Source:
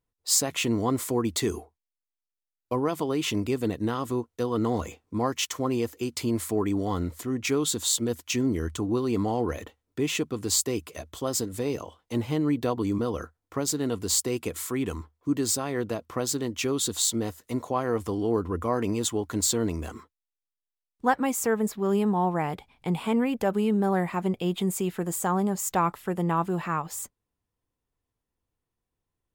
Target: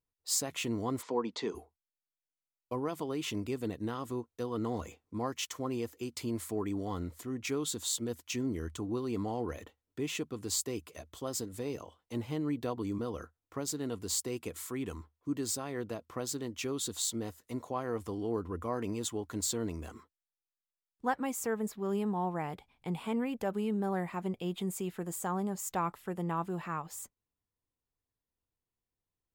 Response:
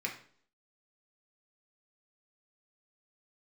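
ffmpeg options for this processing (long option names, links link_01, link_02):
-filter_complex "[0:a]asplit=3[link_01][link_02][link_03];[link_01]afade=type=out:start_time=1.01:duration=0.02[link_04];[link_02]highpass=frequency=180:width=0.5412,highpass=frequency=180:width=1.3066,equalizer=frequency=330:width_type=q:width=4:gain=-4,equalizer=frequency=480:width_type=q:width=4:gain=6,equalizer=frequency=920:width_type=q:width=4:gain=10,lowpass=frequency=5300:width=0.5412,lowpass=frequency=5300:width=1.3066,afade=type=in:start_time=1.01:duration=0.02,afade=type=out:start_time=1.54:duration=0.02[link_05];[link_03]afade=type=in:start_time=1.54:duration=0.02[link_06];[link_04][link_05][link_06]amix=inputs=3:normalize=0,volume=-8.5dB"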